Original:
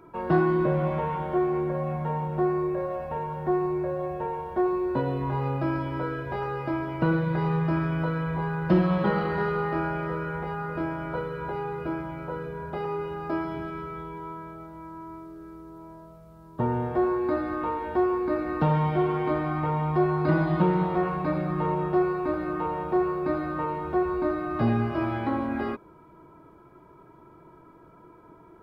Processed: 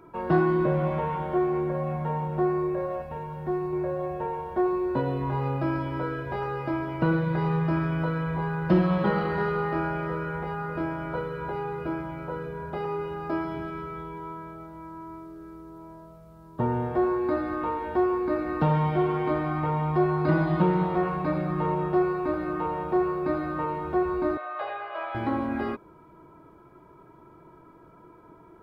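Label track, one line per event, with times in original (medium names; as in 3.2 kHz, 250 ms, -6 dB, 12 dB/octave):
3.020000	3.730000	peaking EQ 790 Hz -5.5 dB 2.8 oct
24.370000	25.150000	elliptic band-pass 540–3800 Hz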